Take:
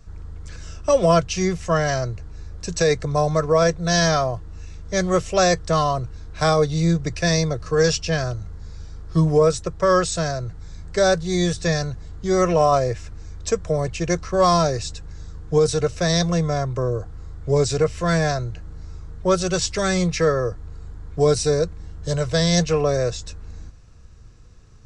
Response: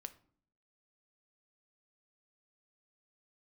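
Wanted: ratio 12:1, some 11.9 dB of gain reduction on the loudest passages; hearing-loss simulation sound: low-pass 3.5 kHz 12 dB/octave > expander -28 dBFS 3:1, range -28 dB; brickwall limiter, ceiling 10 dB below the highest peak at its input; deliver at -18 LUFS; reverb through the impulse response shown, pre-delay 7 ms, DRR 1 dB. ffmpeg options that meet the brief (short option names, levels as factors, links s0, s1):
-filter_complex "[0:a]acompressor=threshold=0.0631:ratio=12,alimiter=limit=0.075:level=0:latency=1,asplit=2[s0][s1];[1:a]atrim=start_sample=2205,adelay=7[s2];[s1][s2]afir=irnorm=-1:irlink=0,volume=1.58[s3];[s0][s3]amix=inputs=2:normalize=0,lowpass=3500,agate=range=0.0398:threshold=0.0398:ratio=3,volume=3.98"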